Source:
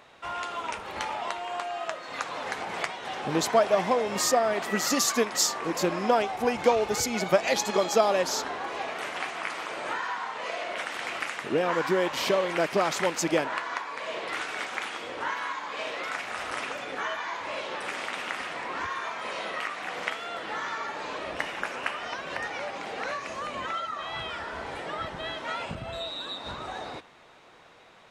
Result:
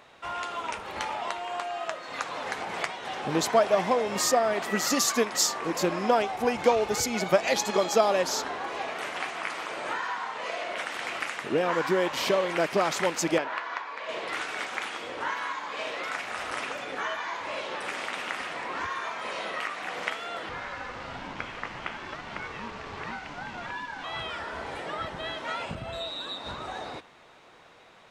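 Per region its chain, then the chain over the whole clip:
13.38–14.09 s: high-pass 450 Hz 6 dB/octave + distance through air 120 m
20.49–24.04 s: one-bit delta coder 64 kbps, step -32 dBFS + distance through air 170 m + ring modulator 360 Hz
whole clip: none

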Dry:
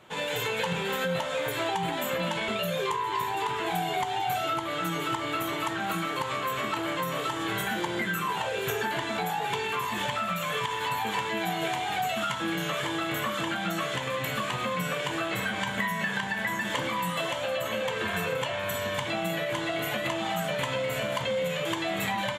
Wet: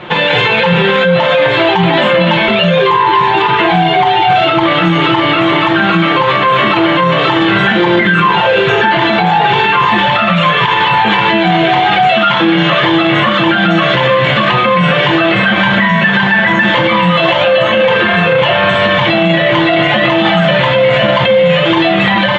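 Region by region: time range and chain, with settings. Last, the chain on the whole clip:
12.10–12.86 s: band-pass 150–7000 Hz + companded quantiser 8-bit
whole clip: low-pass 3.7 kHz 24 dB/octave; comb 5.7 ms, depth 57%; loudness maximiser +26 dB; trim -1 dB

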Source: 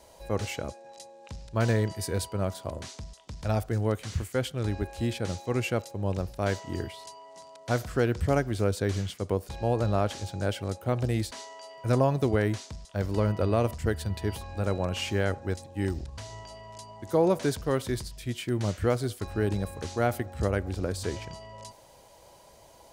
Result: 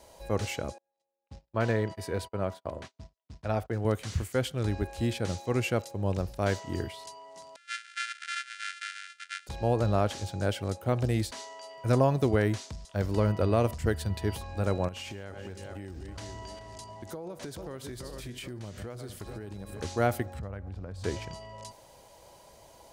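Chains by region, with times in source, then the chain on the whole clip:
0.78–3.85 s: gate -41 dBFS, range -36 dB + high-pass 50 Hz + tone controls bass -5 dB, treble -11 dB
7.56–9.47 s: sorted samples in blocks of 128 samples + brick-wall FIR band-pass 1.3–10 kHz + treble shelf 4.4 kHz -9.5 dB
14.88–19.80 s: backward echo that repeats 215 ms, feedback 54%, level -12 dB + compression 12:1, threshold -36 dBFS
20.39–21.04 s: low-pass 1 kHz 6 dB/octave + peaking EQ 360 Hz -9.5 dB 1.1 oct + compression 4:1, threshold -36 dBFS
whole clip: none

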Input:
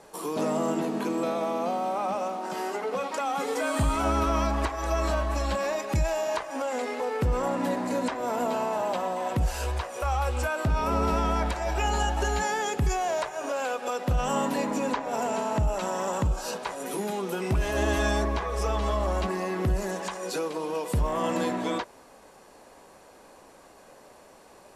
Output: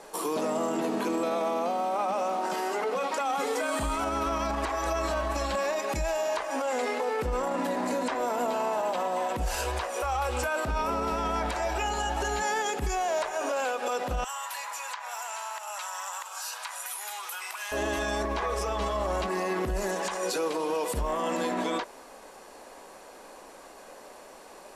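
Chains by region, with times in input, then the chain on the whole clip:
14.24–17.72 s: high-pass 960 Hz 24 dB/octave + treble shelf 11 kHz +11.5 dB + compression 4:1, threshold -38 dBFS
whole clip: peaking EQ 100 Hz -14.5 dB 1.5 oct; peak limiter -26 dBFS; trim +5 dB

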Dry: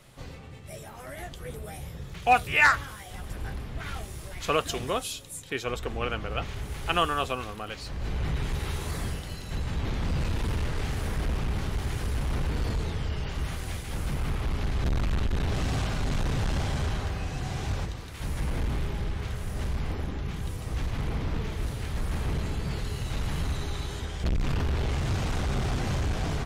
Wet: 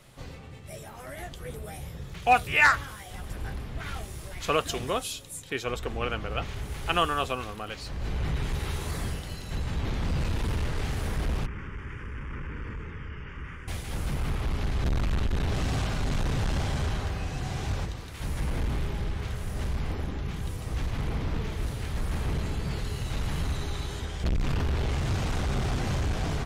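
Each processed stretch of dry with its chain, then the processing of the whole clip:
11.46–13.68 s: low-pass 2.8 kHz + bass shelf 290 Hz -9 dB + static phaser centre 1.7 kHz, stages 4
whole clip: none

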